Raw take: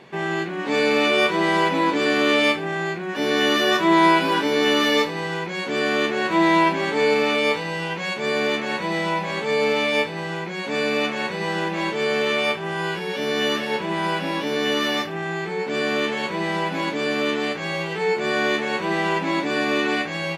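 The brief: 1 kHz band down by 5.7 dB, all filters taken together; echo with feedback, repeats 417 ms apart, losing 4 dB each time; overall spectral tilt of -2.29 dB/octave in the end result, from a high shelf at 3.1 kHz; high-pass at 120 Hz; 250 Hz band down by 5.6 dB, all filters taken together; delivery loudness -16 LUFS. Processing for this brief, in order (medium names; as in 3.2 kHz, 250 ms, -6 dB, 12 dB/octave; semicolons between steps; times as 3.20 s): high-pass 120 Hz; peaking EQ 250 Hz -7.5 dB; peaking EQ 1 kHz -7 dB; treble shelf 3.1 kHz +8 dB; feedback delay 417 ms, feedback 63%, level -4 dB; trim +3.5 dB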